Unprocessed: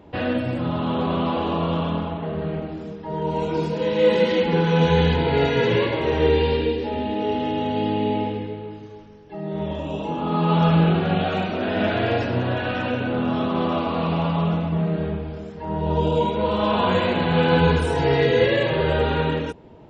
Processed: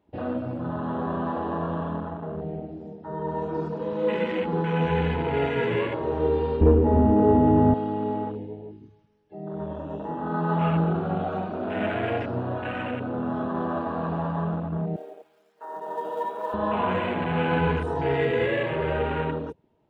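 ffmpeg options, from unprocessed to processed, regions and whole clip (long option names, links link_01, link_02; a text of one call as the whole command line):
ffmpeg -i in.wav -filter_complex "[0:a]asettb=1/sr,asplit=3[link_01][link_02][link_03];[link_01]atrim=end=6.614[link_04];[link_02]atrim=start=6.61:end=7.74,asetpts=PTS-STARTPTS,afade=type=in:duration=0.004:curve=qsin,afade=type=out:start_time=1.126:duration=0.004:curve=qsin,lowpass=frequency=3100:width=0.5412,lowpass=frequency=3100:width=1.3066,aemphasis=mode=reproduction:type=riaa,acontrast=84[link_05];[link_03]atrim=start=7.736[link_06];[link_04][link_05]acrossfade=duration=0.004:curve1=hsin:curve2=qsin[link_07];[link_07][link_06]acrossfade=duration=0.004:curve1=qsin:curve2=hsin,asettb=1/sr,asplit=3[link_08][link_09][link_10];[link_08]atrim=end=14.964[link_11];[link_09]atrim=start=14.96:end=16.54,asetpts=PTS-STARTPTS,afade=type=in:duration=0.004:curve=qsin,afade=type=out:start_time=1.576:duration=0.004:curve=qsin,highpass=580,acrusher=bits=4:mode=log:mix=0:aa=0.000001[link_12];[link_10]atrim=start=16.536[link_13];[link_11][link_12]acrossfade=duration=0.004:curve1=hsin:curve2=qsin[link_14];[link_14][link_13]acrossfade=duration=0.004:curve1=qsin:curve2=hsin,afwtdn=0.0398,lowshelf=frequency=250:gain=-4,bandreject=frequency=520:width=12,volume=-3.5dB" out.wav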